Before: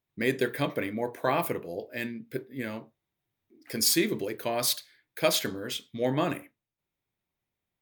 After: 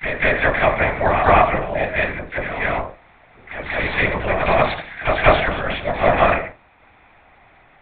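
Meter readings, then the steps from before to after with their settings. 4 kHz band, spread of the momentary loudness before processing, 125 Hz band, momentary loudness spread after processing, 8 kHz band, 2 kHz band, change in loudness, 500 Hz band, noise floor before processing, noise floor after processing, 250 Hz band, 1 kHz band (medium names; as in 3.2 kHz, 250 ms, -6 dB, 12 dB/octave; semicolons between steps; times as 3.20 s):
+1.0 dB, 12 LU, +12.0 dB, 11 LU, under -40 dB, +16.5 dB, +11.0 dB, +11.5 dB, under -85 dBFS, -52 dBFS, +4.0 dB, +17.0 dB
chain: spectral levelling over time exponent 0.6; high-order bell 1.2 kHz +14.5 dB 2.5 oct; phase dispersion lows, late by 48 ms, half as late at 910 Hz; LPC vocoder at 8 kHz whisper; on a send: reverse echo 188 ms -6.5 dB; on the sum: trim -1.5 dB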